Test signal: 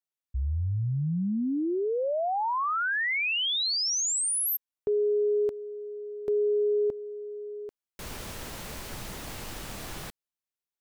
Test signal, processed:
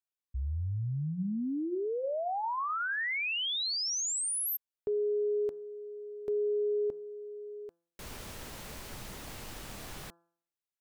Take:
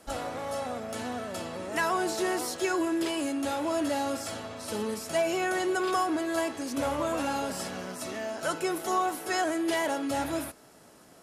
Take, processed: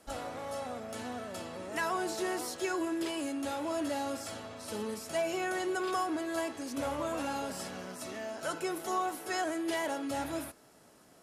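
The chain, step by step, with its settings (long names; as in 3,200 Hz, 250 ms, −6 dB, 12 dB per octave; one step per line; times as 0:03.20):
hum removal 169.6 Hz, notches 10
level −5 dB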